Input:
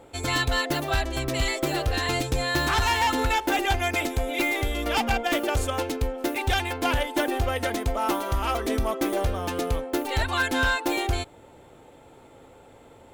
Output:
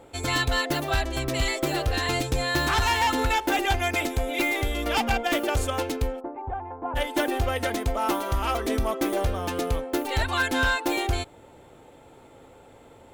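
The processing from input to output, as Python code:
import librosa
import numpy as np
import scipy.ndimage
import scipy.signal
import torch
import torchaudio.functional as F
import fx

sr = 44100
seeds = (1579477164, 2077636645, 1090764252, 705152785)

y = fx.ladder_lowpass(x, sr, hz=1100.0, resonance_pct=50, at=(6.19, 6.95), fade=0.02)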